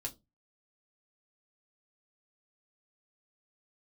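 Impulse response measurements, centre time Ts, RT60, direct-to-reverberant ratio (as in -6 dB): 8 ms, 0.20 s, -0.5 dB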